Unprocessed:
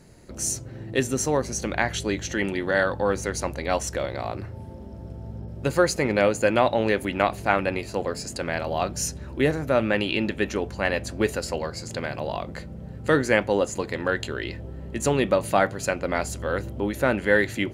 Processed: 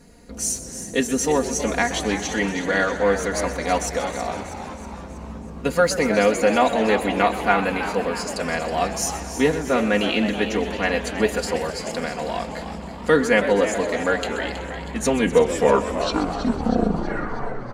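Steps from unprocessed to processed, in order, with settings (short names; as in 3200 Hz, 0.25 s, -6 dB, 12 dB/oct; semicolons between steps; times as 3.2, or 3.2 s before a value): tape stop at the end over 2.82 s; comb 4.2 ms, depth 91%; on a send: frequency-shifting echo 0.321 s, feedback 56%, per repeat +110 Hz, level -11 dB; on the sum: warbling echo 0.126 s, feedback 77%, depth 137 cents, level -14 dB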